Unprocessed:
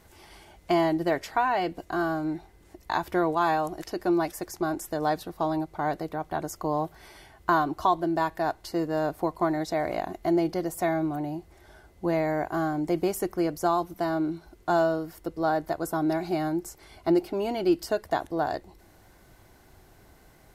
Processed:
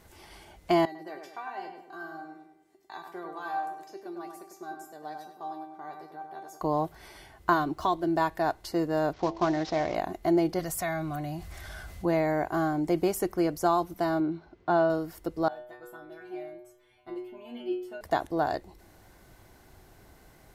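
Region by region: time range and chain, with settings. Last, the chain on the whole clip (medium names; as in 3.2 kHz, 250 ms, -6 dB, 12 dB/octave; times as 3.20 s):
0.85–6.61 s: high-pass 200 Hz + feedback comb 390 Hz, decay 0.32 s, mix 90% + filtered feedback delay 99 ms, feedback 45%, low-pass 3 kHz, level -5 dB
7.53–8.08 s: median filter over 3 samples + de-hum 54.59 Hz, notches 3 + dynamic bell 870 Hz, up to -5 dB, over -34 dBFS, Q 1
9.13–9.95 s: CVSD coder 32 kbps + de-hum 110.6 Hz, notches 8
10.59–12.05 s: peaking EQ 370 Hz -14 dB 1.4 oct + band-stop 890 Hz, Q 6 + level flattener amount 50%
14.20–14.90 s: high-pass 84 Hz + distance through air 210 m
15.48–18.01 s: resonant high shelf 3.9 kHz -6 dB, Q 3 + inharmonic resonator 120 Hz, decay 0.65 s, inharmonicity 0.002
whole clip: none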